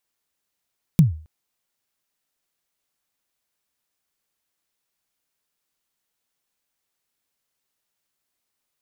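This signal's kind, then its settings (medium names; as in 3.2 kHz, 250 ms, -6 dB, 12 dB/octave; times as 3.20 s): kick drum length 0.27 s, from 180 Hz, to 78 Hz, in 138 ms, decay 0.40 s, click on, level -6 dB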